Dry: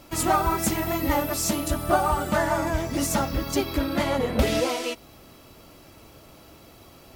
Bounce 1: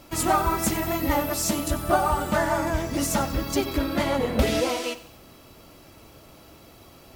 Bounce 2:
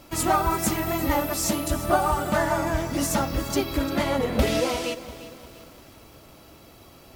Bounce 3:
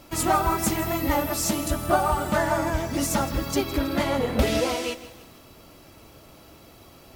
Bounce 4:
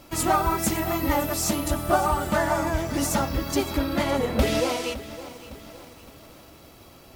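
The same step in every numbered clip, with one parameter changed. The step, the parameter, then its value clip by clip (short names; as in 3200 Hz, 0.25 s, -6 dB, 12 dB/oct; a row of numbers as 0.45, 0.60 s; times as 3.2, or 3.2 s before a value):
lo-fi delay, time: 93, 347, 161, 561 ms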